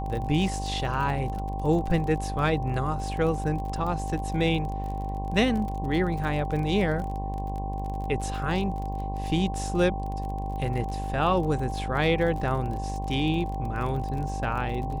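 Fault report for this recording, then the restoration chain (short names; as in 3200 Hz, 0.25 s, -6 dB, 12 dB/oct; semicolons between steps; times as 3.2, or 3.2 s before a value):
buzz 50 Hz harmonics 22 -32 dBFS
crackle 38/s -33 dBFS
tone 780 Hz -34 dBFS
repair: de-click; notch 780 Hz, Q 30; de-hum 50 Hz, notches 22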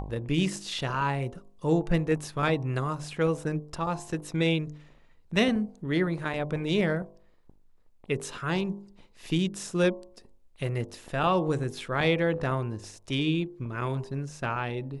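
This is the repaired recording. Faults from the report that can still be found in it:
none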